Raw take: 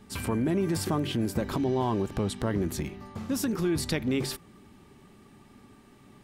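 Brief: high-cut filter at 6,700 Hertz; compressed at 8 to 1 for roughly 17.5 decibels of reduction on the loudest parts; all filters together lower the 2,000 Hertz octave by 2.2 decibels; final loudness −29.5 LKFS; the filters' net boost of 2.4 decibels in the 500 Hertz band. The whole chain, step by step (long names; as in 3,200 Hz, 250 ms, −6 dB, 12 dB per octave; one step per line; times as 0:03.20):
low-pass filter 6,700 Hz
parametric band 500 Hz +3.5 dB
parametric band 2,000 Hz −3 dB
downward compressor 8 to 1, threshold −41 dBFS
level +16 dB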